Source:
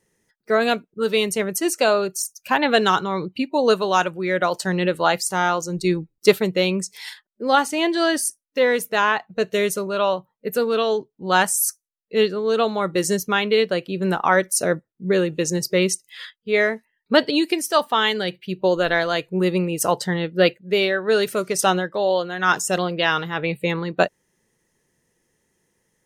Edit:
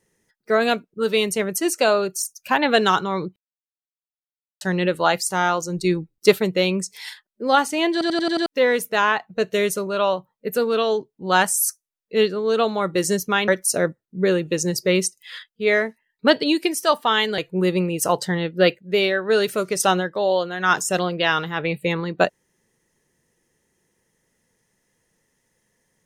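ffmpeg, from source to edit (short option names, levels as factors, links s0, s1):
-filter_complex "[0:a]asplit=11[s0][s1][s2][s3][s4][s5][s6][s7][s8][s9][s10];[s0]atrim=end=3.36,asetpts=PTS-STARTPTS,afade=t=out:st=3.356:d=0.004:c=hsin[s11];[s1]atrim=start=3.36:end=4.61,asetpts=PTS-STARTPTS,volume=0[s12];[s2]atrim=start=4.61:end=8.012,asetpts=PTS-STARTPTS,afade=t=in:d=0.004:c=hsin[s13];[s3]atrim=start=7.918:end=8.012[s14];[s4]atrim=start=7.918:end=8.012[s15];[s5]atrim=start=7.918:end=8.012[s16];[s6]atrim=start=7.918:end=8.012[s17];[s7]atrim=start=7.918:end=8.012[s18];[s8]atrim=start=8.458:end=13.482[s19];[s9]atrim=start=14.348:end=18.252[s20];[s10]atrim=start=19.168[s21];[s11][s12][s13]concat=n=3:v=0:a=1[s22];[s22][s14]acrossfade=d=0.004:c1=hsin:c2=hsin[s23];[s23][s15]acrossfade=d=0.004:c1=hsin:c2=hsin[s24];[s24][s16]acrossfade=d=0.004:c1=hsin:c2=hsin[s25];[s25][s17]acrossfade=d=0.004:c1=hsin:c2=hsin[s26];[s26][s18]acrossfade=d=0.004:c1=hsin:c2=hsin[s27];[s27][s19]acrossfade=d=0.004:c1=hsin:c2=hsin[s28];[s28][s20]acrossfade=d=0.004:c1=hsin:c2=hsin[s29];[s29][s21]acrossfade=d=0.004:c1=hsin:c2=hsin"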